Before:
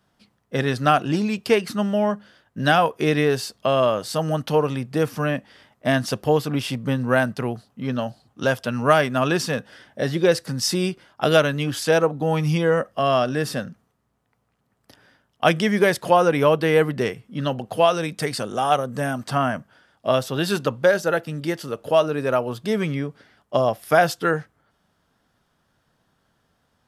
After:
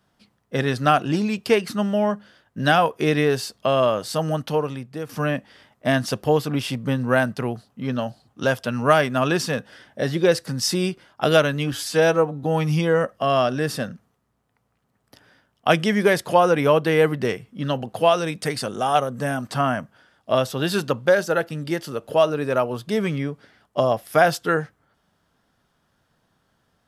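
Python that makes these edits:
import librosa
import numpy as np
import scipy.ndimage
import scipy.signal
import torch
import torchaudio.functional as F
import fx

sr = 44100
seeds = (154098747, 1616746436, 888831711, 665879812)

y = fx.edit(x, sr, fx.fade_out_to(start_s=4.25, length_s=0.84, floor_db=-12.0),
    fx.stretch_span(start_s=11.73, length_s=0.47, factor=1.5), tone=tone)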